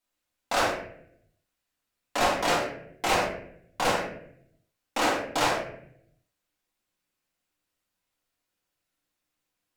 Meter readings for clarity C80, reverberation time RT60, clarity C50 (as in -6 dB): 7.5 dB, 0.70 s, 4.5 dB